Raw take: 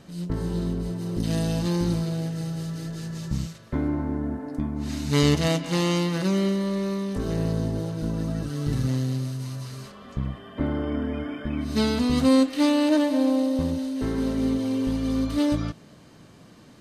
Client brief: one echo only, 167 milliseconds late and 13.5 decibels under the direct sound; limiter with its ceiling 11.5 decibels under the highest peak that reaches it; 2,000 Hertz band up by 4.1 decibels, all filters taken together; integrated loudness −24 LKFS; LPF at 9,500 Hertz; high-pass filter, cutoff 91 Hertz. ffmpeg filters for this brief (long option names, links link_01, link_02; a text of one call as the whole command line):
ffmpeg -i in.wav -af "highpass=91,lowpass=9500,equalizer=frequency=2000:width_type=o:gain=5,alimiter=limit=-18dB:level=0:latency=1,aecho=1:1:167:0.211,volume=3.5dB" out.wav